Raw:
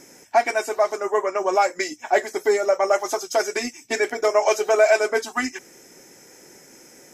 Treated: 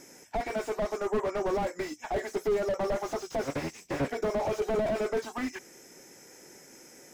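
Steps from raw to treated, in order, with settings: 3.43–4.08 cycle switcher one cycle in 3, inverted; slew limiter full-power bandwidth 45 Hz; gain -4 dB

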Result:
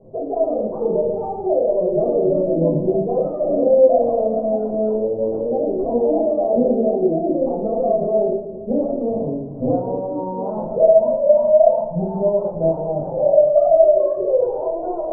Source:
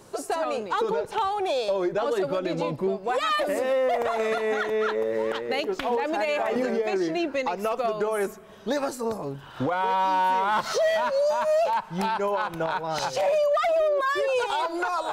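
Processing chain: elliptic low-pass 660 Hz, stop band 80 dB; split-band echo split 450 Hz, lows 0.24 s, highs 0.112 s, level -11 dB; shoebox room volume 450 m³, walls furnished, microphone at 5.8 m; gain -1 dB

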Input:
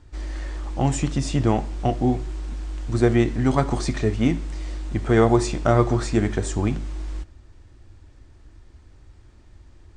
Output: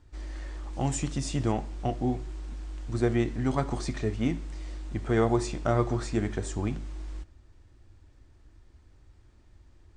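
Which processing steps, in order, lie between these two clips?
0.73–1.52 high shelf 5700 Hz +7.5 dB; gain -7.5 dB

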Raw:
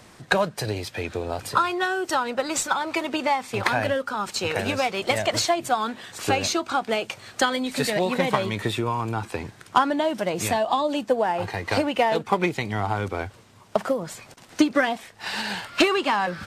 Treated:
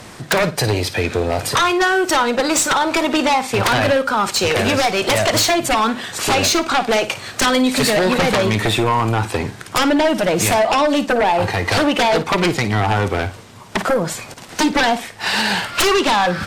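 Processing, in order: sine folder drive 12 dB, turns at -7.5 dBFS; flutter echo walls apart 9.4 m, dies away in 0.25 s; gain -4 dB

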